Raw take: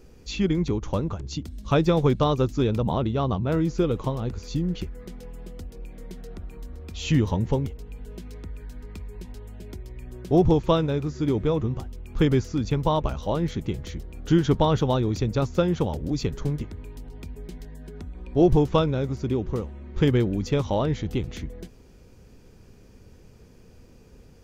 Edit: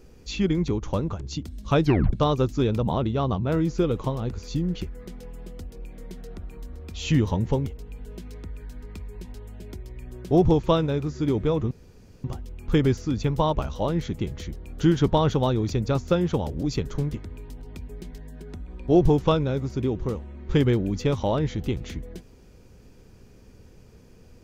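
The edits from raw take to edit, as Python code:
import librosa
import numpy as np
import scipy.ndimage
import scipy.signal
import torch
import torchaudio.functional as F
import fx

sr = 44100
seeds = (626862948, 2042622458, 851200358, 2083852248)

y = fx.edit(x, sr, fx.tape_stop(start_s=1.84, length_s=0.29),
    fx.insert_room_tone(at_s=11.71, length_s=0.53), tone=tone)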